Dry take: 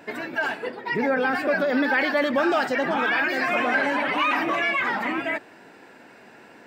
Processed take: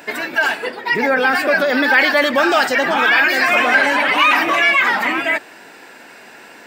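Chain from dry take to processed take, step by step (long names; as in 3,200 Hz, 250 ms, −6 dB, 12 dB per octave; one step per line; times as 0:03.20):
spectral tilt +2.5 dB per octave
level +8 dB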